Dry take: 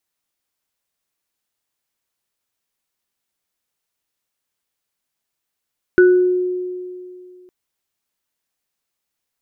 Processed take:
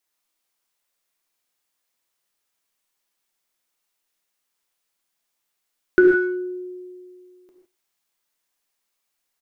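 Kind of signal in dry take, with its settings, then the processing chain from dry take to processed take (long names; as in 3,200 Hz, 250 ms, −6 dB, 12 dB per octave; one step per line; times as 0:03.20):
inharmonic partials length 1.51 s, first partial 363 Hz, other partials 1,480 Hz, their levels −7 dB, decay 2.41 s, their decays 0.45 s, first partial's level −6 dB
parametric band 97 Hz −9.5 dB 2.6 octaves
far-end echo of a speakerphone 100 ms, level −23 dB
reverb whose tail is shaped and stops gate 180 ms flat, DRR 1 dB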